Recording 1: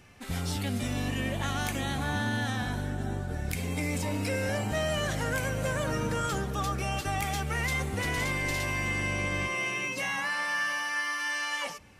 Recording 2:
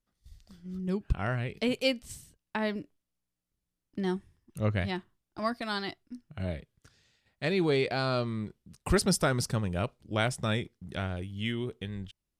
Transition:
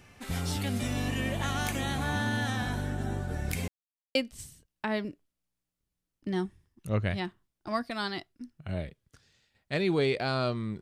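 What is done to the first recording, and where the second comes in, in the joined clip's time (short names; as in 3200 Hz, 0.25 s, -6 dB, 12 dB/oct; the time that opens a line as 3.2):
recording 1
3.68–4.15 mute
4.15 switch to recording 2 from 1.86 s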